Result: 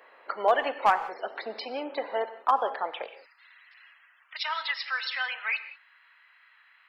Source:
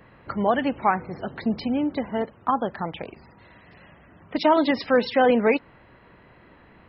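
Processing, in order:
high-pass filter 470 Hz 24 dB per octave, from 0:03.08 1,400 Hz
gain into a clipping stage and back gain 12.5 dB
reverb whose tail is shaped and stops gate 210 ms flat, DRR 11.5 dB

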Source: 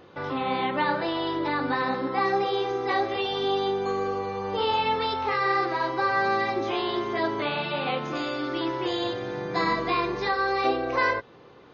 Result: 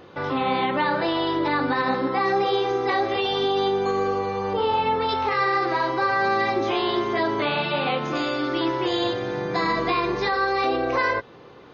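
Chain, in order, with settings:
0:04.53–0:05.09: high-shelf EQ 2,500 Hz −11.5 dB
brickwall limiter −18 dBFS, peak gain reduction 6 dB
level +4.5 dB

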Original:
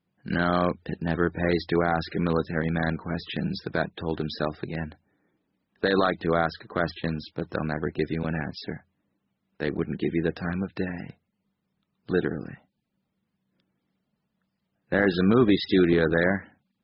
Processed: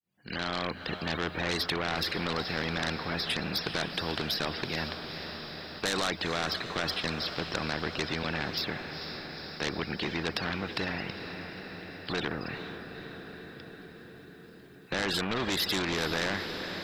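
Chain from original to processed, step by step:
fade in at the beginning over 1.17 s
high-shelf EQ 2,800 Hz +11 dB
in parallel at +2 dB: brickwall limiter −16.5 dBFS, peak gain reduction 9 dB
on the sum: soft clipping −11.5 dBFS, distortion −14 dB
on a send: feedback delay with all-pass diffusion 463 ms, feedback 61%, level −16 dB
on the sum: every bin compressed towards the loudest bin 2 to 1
level −6 dB

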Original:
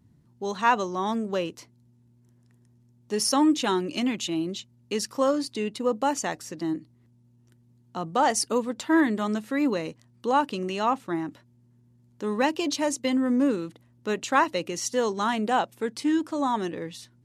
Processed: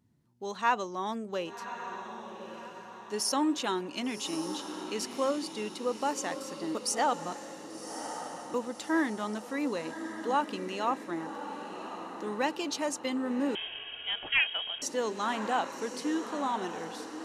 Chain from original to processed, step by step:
low-shelf EQ 210 Hz −9 dB
0:06.75–0:08.54: reverse
feedback delay with all-pass diffusion 1,134 ms, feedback 51%, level −9 dB
0:13.55–0:14.82: voice inversion scrambler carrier 3,500 Hz
level −5 dB

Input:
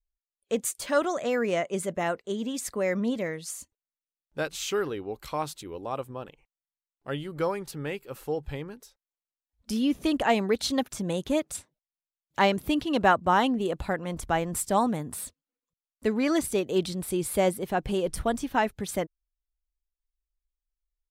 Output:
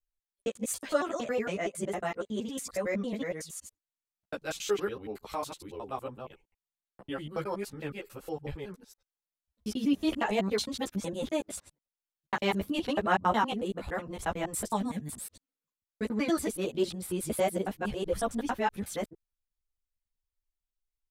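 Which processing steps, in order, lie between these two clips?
reversed piece by piece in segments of 92 ms
gain on a spectral selection 0:14.75–0:15.11, 290–1,600 Hz −9 dB
string-ensemble chorus
level −1 dB

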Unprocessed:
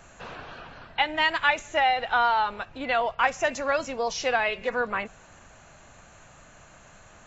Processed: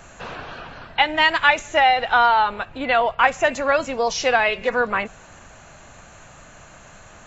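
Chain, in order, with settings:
0:02.26–0:03.93: parametric band 5,600 Hz −8 dB 0.47 octaves
level +6.5 dB

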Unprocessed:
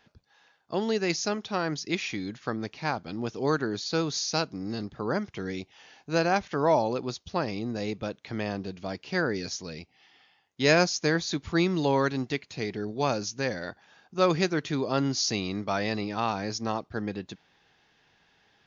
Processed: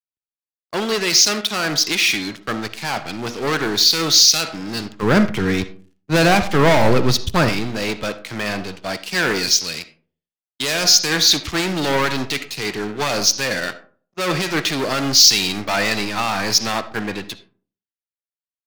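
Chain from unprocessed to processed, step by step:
low-pass filter 5,300 Hz 12 dB per octave
hum removal 240.6 Hz, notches 10
leveller curve on the samples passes 5
tilt shelving filter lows −7 dB, about 1,200 Hz
noise gate −30 dBFS, range −15 dB
0:05.02–0:07.49: low-shelf EQ 260 Hz +11 dB
convolution reverb RT60 0.55 s, pre-delay 25 ms, DRR 11.5 dB
boost into a limiter +4.5 dB
multiband upward and downward expander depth 70%
level −7 dB

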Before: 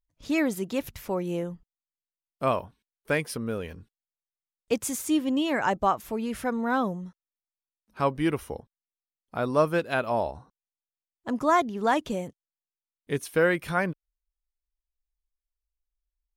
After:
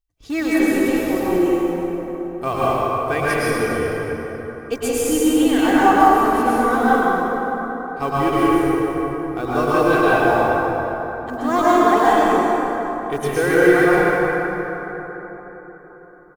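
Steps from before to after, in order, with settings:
comb filter 2.6 ms, depth 62%
noise that follows the level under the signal 31 dB
in parallel at −10.5 dB: comparator with hysteresis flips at −22 dBFS
on the sum: dense smooth reverb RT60 4.4 s, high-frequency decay 0.45×, pre-delay 95 ms, DRR −9.5 dB
level −1 dB

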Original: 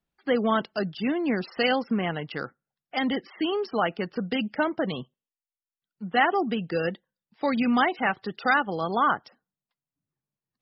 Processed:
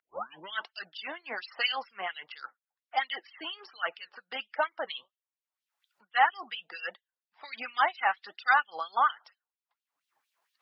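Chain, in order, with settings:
turntable start at the beginning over 0.53 s
upward compression, threshold −45 dBFS
flanger 1.3 Hz, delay 1.4 ms, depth 4.7 ms, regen +73%
auto-filter high-pass sine 4.3 Hz 760–3,500 Hz
one half of a high-frequency compander decoder only
level −1 dB

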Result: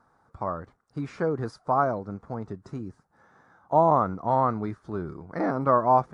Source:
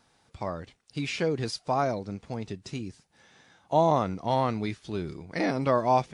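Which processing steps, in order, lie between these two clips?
high shelf with overshoot 1,900 Hz −13.5 dB, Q 3

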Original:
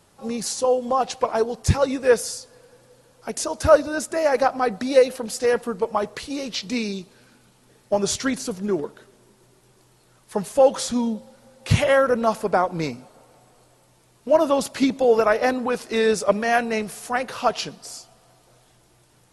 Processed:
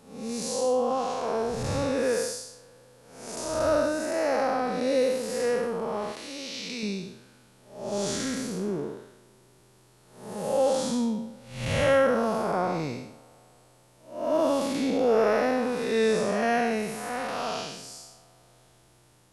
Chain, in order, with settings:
spectrum smeared in time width 257 ms
0:06.12–0:06.83: low-shelf EQ 420 Hz −10.5 dB

